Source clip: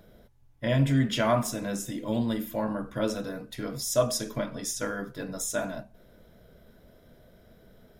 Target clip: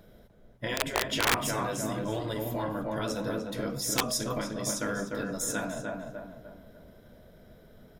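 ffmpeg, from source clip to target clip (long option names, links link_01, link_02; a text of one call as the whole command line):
ffmpeg -i in.wav -filter_complex "[0:a]asplit=2[link_01][link_02];[link_02]adelay=299,lowpass=frequency=1900:poles=1,volume=-3.5dB,asplit=2[link_03][link_04];[link_04]adelay=299,lowpass=frequency=1900:poles=1,volume=0.44,asplit=2[link_05][link_06];[link_06]adelay=299,lowpass=frequency=1900:poles=1,volume=0.44,asplit=2[link_07][link_08];[link_08]adelay=299,lowpass=frequency=1900:poles=1,volume=0.44,asplit=2[link_09][link_10];[link_10]adelay=299,lowpass=frequency=1900:poles=1,volume=0.44,asplit=2[link_11][link_12];[link_12]adelay=299,lowpass=frequency=1900:poles=1,volume=0.44[link_13];[link_01][link_03][link_05][link_07][link_09][link_11][link_13]amix=inputs=7:normalize=0,aeval=exprs='(mod(5.01*val(0)+1,2)-1)/5.01':channel_layout=same,afftfilt=real='re*lt(hypot(re,im),0.251)':imag='im*lt(hypot(re,im),0.251)':win_size=1024:overlap=0.75" out.wav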